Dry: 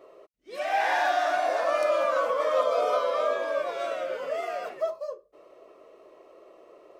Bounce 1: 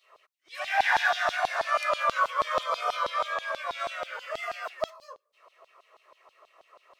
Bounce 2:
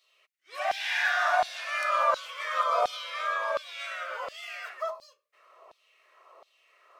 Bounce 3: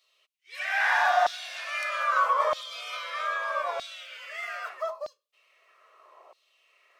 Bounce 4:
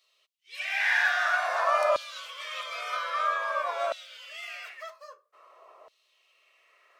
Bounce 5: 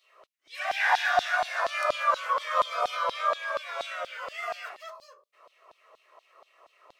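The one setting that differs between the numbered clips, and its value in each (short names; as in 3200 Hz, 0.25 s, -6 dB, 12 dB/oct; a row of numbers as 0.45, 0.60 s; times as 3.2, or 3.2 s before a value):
LFO high-pass, rate: 6.2, 1.4, 0.79, 0.51, 4.2 Hz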